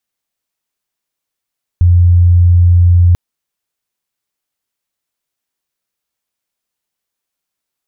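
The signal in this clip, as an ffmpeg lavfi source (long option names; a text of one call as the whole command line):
ffmpeg -f lavfi -i "aevalsrc='0.631*sin(2*PI*87.8*t)':duration=1.34:sample_rate=44100" out.wav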